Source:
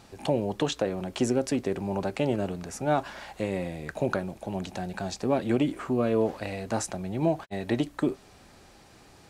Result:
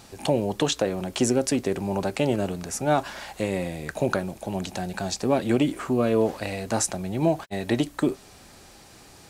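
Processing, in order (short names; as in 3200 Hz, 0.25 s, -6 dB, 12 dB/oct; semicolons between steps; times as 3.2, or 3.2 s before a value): high shelf 4900 Hz +8.5 dB; gain +3 dB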